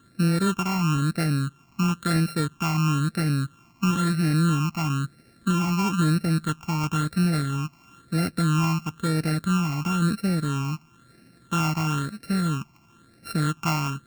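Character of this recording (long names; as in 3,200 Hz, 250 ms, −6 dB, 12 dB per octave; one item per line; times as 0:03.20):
a buzz of ramps at a fixed pitch in blocks of 32 samples
phaser sweep stages 8, 1 Hz, lowest notch 490–1,000 Hz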